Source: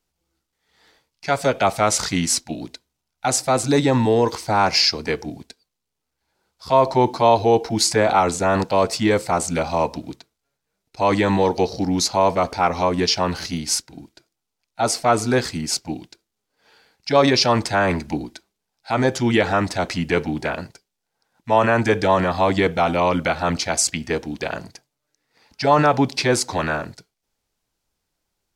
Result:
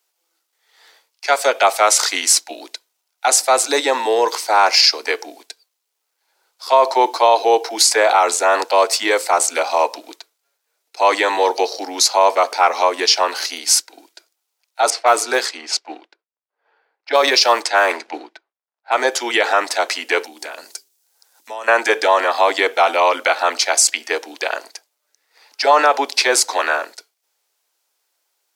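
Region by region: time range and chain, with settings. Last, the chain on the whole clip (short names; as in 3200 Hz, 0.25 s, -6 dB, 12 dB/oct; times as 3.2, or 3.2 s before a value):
14.9–18.92 G.711 law mismatch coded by A + low-pass opened by the level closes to 1300 Hz, open at -14.5 dBFS
20.24–21.68 compressor 2.5:1, threshold -39 dBFS + tone controls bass +13 dB, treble +12 dB + notches 50/100/150/200/250/300/350/400 Hz
whole clip: Bessel high-pass 630 Hz, order 8; high shelf 11000 Hz +7 dB; maximiser +8 dB; gain -1 dB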